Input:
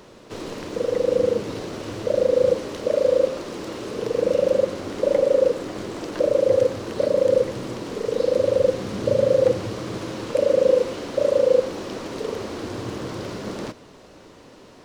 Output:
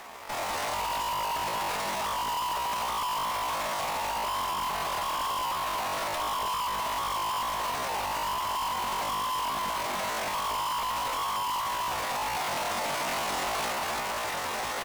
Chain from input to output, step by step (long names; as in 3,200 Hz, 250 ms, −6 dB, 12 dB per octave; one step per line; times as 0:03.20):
dynamic equaliser 210 Hz, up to −6 dB, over −41 dBFS, Q 2.3
in parallel at +2 dB: downward compressor 12 to 1, threshold −31 dBFS, peak gain reduction 19 dB
on the sum: bass and treble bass −13 dB, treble −7 dB
repeating echo 317 ms, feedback 37%, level −8.5 dB
automatic gain control gain up to 16.5 dB
on a send: feedback echo with a band-pass in the loop 61 ms, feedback 54%, band-pass 570 Hz, level −19.5 dB
on the sum: tube saturation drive 30 dB, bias 0.7
decimation without filtering 6×
pitch shifter +11.5 semitones
level +1 dB